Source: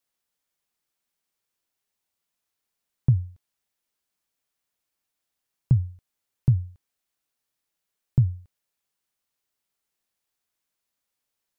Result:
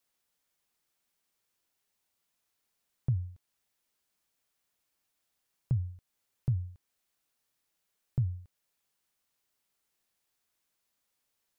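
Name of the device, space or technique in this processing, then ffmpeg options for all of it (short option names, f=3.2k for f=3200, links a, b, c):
stacked limiters: -af "alimiter=limit=-14dB:level=0:latency=1:release=486,alimiter=limit=-19dB:level=0:latency=1:release=168,alimiter=limit=-22.5dB:level=0:latency=1:release=450,volume=2dB"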